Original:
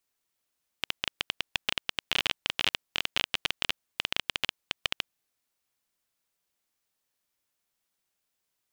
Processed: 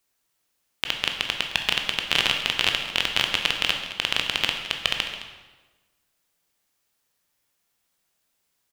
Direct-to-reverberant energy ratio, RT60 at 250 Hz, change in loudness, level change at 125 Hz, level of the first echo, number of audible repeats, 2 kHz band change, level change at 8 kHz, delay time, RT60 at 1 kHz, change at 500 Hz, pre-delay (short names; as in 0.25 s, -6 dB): 3.0 dB, 1.3 s, +7.5 dB, +8.5 dB, -14.5 dB, 1, +8.0 dB, +7.5 dB, 0.214 s, 1.2 s, +7.5 dB, 14 ms